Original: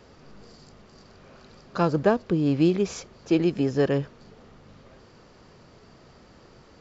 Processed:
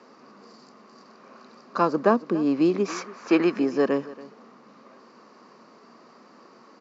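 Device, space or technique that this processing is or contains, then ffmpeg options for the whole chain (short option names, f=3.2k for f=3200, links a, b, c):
television speaker: -filter_complex "[0:a]highpass=f=220:w=0.5412,highpass=f=220:w=1.3066,equalizer=f=230:t=q:w=4:g=6,equalizer=f=1.1k:t=q:w=4:g=10,equalizer=f=3.3k:t=q:w=4:g=-8,lowpass=f=6.8k:w=0.5412,lowpass=f=6.8k:w=1.3066,asettb=1/sr,asplit=3[a][b][c];[a]atrim=end=2.884[d];[b]atrim=start=2.88:end=3.59,asetpts=PTS-STARTPTS,afade=t=in:d=0.004:c=qsin,afade=t=out:st=0.706:d=0.004:c=qsin,equalizer=f=1.6k:w=0.74:g=12[e];[c]atrim=start=3.586[f];[d][e]acrossfade=d=0.004:c1=hsin:c2=qsin[g];[g][f]acrossfade=d=0.004:c1=qsin:c2=hsin,aecho=1:1:281:0.119"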